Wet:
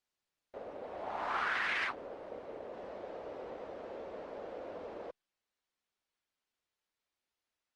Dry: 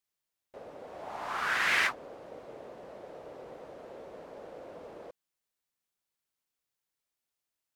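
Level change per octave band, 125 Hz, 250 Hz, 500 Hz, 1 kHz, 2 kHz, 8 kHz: −4.0 dB, 0.0 dB, +1.0 dB, −2.0 dB, −6.0 dB, below −15 dB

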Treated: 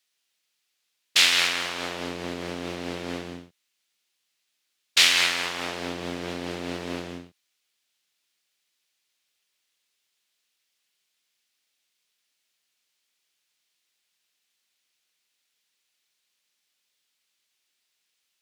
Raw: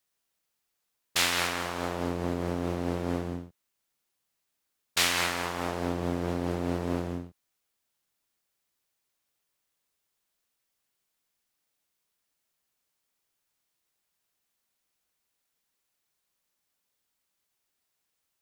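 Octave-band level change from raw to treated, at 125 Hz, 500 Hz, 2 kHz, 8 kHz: −7.0, −2.0, +6.5, +5.0 decibels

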